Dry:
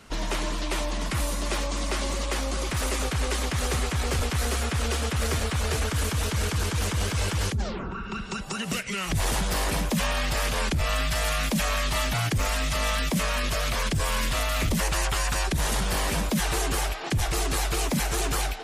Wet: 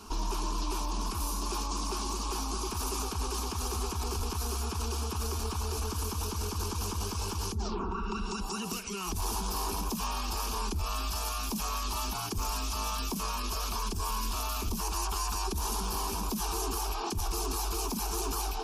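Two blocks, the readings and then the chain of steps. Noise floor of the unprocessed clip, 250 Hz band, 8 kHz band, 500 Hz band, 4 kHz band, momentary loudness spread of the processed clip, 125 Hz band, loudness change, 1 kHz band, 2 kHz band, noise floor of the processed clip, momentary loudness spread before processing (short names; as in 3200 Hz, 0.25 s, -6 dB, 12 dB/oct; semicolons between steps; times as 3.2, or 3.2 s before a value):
-33 dBFS, -7.0 dB, -4.5 dB, -8.0 dB, -7.0 dB, 2 LU, -8.5 dB, -6.5 dB, -3.0 dB, -14.5 dB, -36 dBFS, 4 LU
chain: ripple EQ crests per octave 0.82, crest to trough 7 dB; limiter -28 dBFS, peak gain reduction 13 dB; fixed phaser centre 540 Hz, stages 6; gain +5.5 dB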